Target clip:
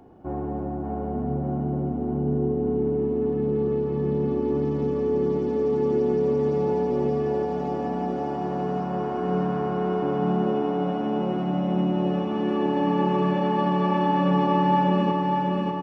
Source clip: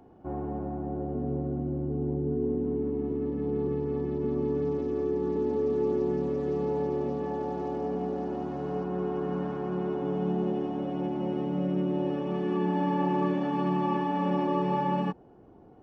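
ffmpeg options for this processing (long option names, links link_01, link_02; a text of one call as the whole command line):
ffmpeg -i in.wav -af "aecho=1:1:593|1186|1779|2372|2965|3558|4151|4744|5337:0.708|0.418|0.246|0.145|0.0858|0.0506|0.0299|0.0176|0.0104,volume=4dB" out.wav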